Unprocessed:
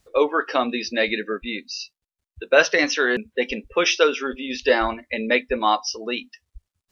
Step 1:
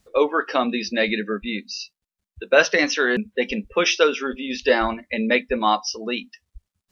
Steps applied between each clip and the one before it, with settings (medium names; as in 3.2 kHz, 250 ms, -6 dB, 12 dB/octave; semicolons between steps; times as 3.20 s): peaking EQ 200 Hz +10.5 dB 0.3 oct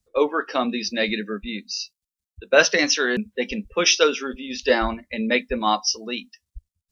tone controls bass +4 dB, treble +8 dB; three bands expanded up and down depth 40%; trim -2.5 dB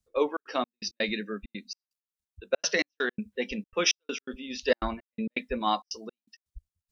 trance gate "xxxx.xx..x.x" 165 bpm -60 dB; trim -6 dB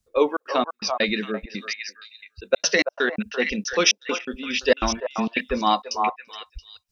repeats whose band climbs or falls 338 ms, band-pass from 870 Hz, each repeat 1.4 oct, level -2 dB; trim +6.5 dB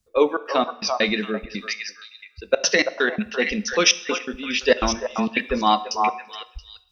reverberation RT60 0.75 s, pre-delay 3 ms, DRR 13.5 dB; trim +1.5 dB